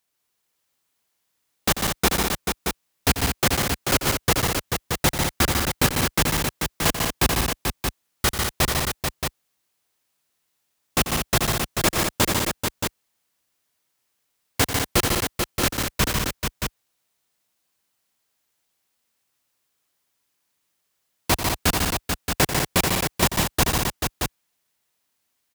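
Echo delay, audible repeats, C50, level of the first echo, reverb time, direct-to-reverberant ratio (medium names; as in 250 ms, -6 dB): 91 ms, 5, no reverb, -11.0 dB, no reverb, no reverb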